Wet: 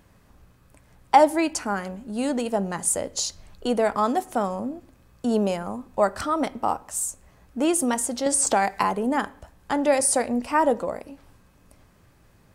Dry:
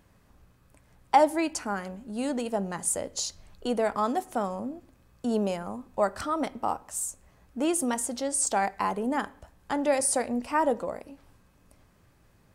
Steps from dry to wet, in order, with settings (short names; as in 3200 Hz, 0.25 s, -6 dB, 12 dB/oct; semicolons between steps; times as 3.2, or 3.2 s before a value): 8.26–8.83 three-band squash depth 70%; gain +4.5 dB